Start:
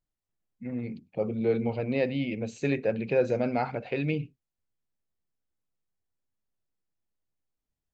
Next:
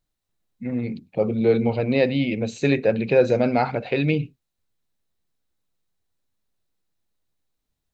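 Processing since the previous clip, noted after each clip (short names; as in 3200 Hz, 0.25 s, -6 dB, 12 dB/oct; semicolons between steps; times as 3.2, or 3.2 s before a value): bell 3900 Hz +7 dB 0.22 oct; gain +7.5 dB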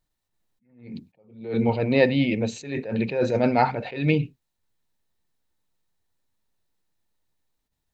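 small resonant body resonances 910/1800 Hz, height 8 dB; attack slew limiter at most 110 dB/s; gain +1 dB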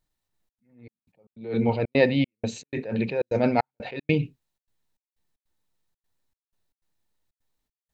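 step gate "xxxxx.xxx..xx." 154 bpm -60 dB; gain -1 dB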